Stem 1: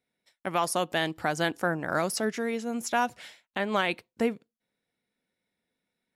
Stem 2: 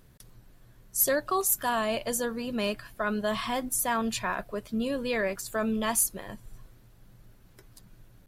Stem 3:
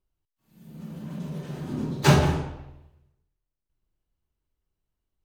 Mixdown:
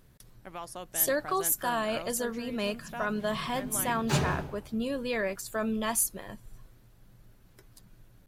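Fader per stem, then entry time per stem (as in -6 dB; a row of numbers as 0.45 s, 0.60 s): -14.0 dB, -2.0 dB, -10.0 dB; 0.00 s, 0.00 s, 2.05 s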